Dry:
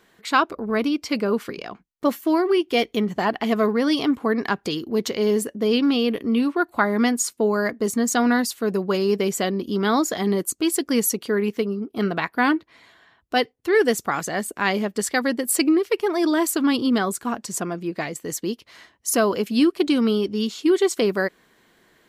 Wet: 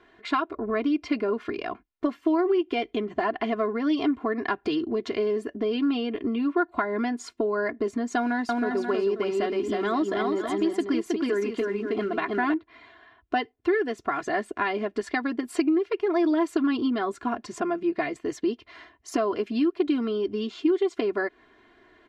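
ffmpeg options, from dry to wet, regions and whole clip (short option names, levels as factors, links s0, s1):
-filter_complex "[0:a]asettb=1/sr,asplit=3[s0][s1][s2];[s0]atrim=end=8.174[s3];[s1]atrim=start=8.17:end=12.54,asetpts=PTS-STARTPTS,afade=t=in:d=0.004:c=qsin,afade=t=out:st=4.366:d=0.004:c=qsin,acrusher=bits=7:mode=log:mix=0:aa=0.000001,aecho=1:1:319|536:0.668|0.251,atrim=end_sample=192717[s4];[s2]atrim=start=12.536[s5];[s3][s4]acrossfade=d=0.004:c1=hsin:c2=qsin[s6];[s6][s5]acrossfade=d=0.004:c1=qsin:c2=hsin,lowpass=2700,acompressor=threshold=0.0562:ratio=6,aecho=1:1:2.9:0.85"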